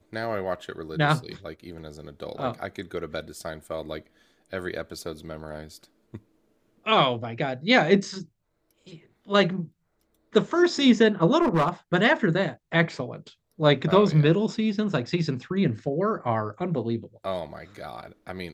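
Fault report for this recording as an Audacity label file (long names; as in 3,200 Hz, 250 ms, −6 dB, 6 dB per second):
11.410000	11.690000	clipping −17.5 dBFS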